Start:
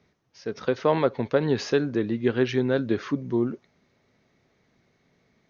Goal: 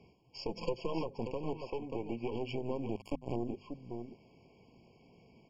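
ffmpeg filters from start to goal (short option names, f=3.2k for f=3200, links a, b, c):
-filter_complex "[0:a]asettb=1/sr,asplit=3[a][b][c];[a]atrim=end=1.534[d];[b]atrim=start=1.53:end=2.32,asetpts=PTS-STARTPTS,afade=t=in:d=0.004:c=qsin,afade=t=out:st=0.786:d=0.004:c=qsin,acrossover=split=520 2300:gain=0.158 1 0.0891[e][f][g];[e][f][g]amix=inputs=3:normalize=0[h];[c]atrim=start=2.316[i];[d][h]acrossfade=d=0.004:c1=hsin:c2=qsin[j];[j][i]acrossfade=d=0.004:c1=qsin:c2=hsin,acrusher=bits=9:mode=log:mix=0:aa=0.000001,acompressor=threshold=-38dB:ratio=4,aeval=exprs='0.1*(cos(1*acos(clip(val(0)/0.1,-1,1)))-cos(1*PI/2))+0.0178*(cos(6*acos(clip(val(0)/0.1,-1,1)))-cos(6*PI/2))+0.00126*(cos(7*acos(clip(val(0)/0.1,-1,1)))-cos(7*PI/2))':c=same,asplit=2[k][l];[l]aecho=0:1:586:0.282[m];[k][m]amix=inputs=2:normalize=0,aresample=16000,aresample=44100,bandreject=f=600:w=12,alimiter=level_in=6.5dB:limit=-24dB:level=0:latency=1:release=117,volume=-6.5dB,asettb=1/sr,asplit=3[n][o][p];[n]atrim=end=0.484[q];[o]atrim=start=0.48:end=1.01,asetpts=PTS-STARTPTS,afade=t=in:d=0.004:c=qsin,afade=t=out:st=0.526:d=0.004:c=qsin,aecho=1:1:5.9:0.85,atrim=end_sample=23373[r];[p]atrim=start=1.006[s];[q][r]acrossfade=d=0.004:c1=hsin:c2=qsin[t];[t][s]acrossfade=d=0.004:c1=qsin:c2=hsin,asettb=1/sr,asplit=3[u][v][w];[u]atrim=end=2.964[x];[v]atrim=start=2.96:end=3.36,asetpts=PTS-STARTPTS,afade=t=in:d=0.004:c=qsin,afade=t=out:st=0.396:d=0.004:c=qsin,acrusher=bits=5:mix=0:aa=0.5[y];[w]atrim=start=3.356[z];[x][y]acrossfade=d=0.004:c1=hsin:c2=qsin[aa];[aa][z]acrossfade=d=0.004:c1=qsin:c2=hsin,bandreject=f=50:t=h:w=6,bandreject=f=100:t=h:w=6,bandreject=f=150:t=h:w=6,bandreject=f=200:t=h:w=6,bandreject=f=250:t=h:w=6,afftfilt=real='re*eq(mod(floor(b*sr/1024/1100),2),0)':imag='im*eq(mod(floor(b*sr/1024/1100),2),0)':win_size=1024:overlap=0.75,volume=6.5dB"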